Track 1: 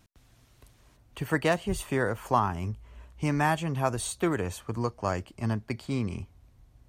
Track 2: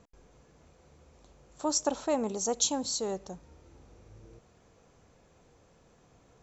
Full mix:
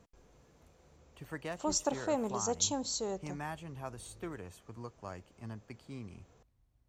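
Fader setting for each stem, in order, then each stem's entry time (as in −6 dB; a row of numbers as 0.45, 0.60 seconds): −15.5, −3.5 decibels; 0.00, 0.00 seconds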